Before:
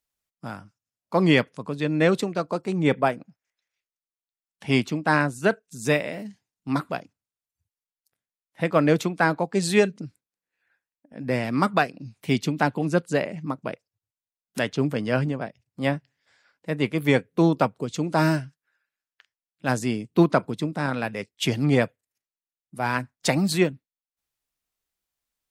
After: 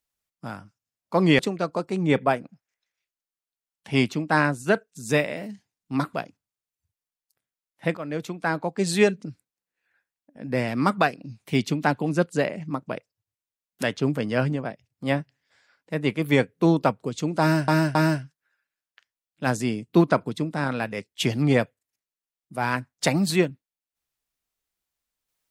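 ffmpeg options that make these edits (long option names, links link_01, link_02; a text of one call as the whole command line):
ffmpeg -i in.wav -filter_complex "[0:a]asplit=5[link_01][link_02][link_03][link_04][link_05];[link_01]atrim=end=1.392[link_06];[link_02]atrim=start=2.148:end=8.73,asetpts=PTS-STARTPTS,afade=type=out:start_time=6.578:duration=0.004:curve=hsin:silence=0.141254[link_07];[link_03]atrim=start=8.73:end=18.442,asetpts=PTS-STARTPTS,afade=type=in:duration=0.96:silence=0.141254[link_08];[link_04]atrim=start=18.168:end=18.442[link_09];[link_05]atrim=start=18.168[link_10];[link_07][link_08]concat=n=2:v=0:a=1[link_11];[link_06][link_11]acrossfade=duration=0.004:curve1=hsin:curve2=hsin[link_12];[link_12][link_09]acrossfade=duration=0.004:curve1=hsin:curve2=hsin[link_13];[link_13][link_10]acrossfade=duration=0.004:curve1=hsin:curve2=hsin" out.wav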